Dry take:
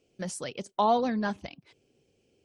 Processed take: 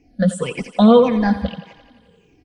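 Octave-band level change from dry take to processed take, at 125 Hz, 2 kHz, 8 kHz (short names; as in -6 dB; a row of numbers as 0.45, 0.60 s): +18.5 dB, +9.0 dB, n/a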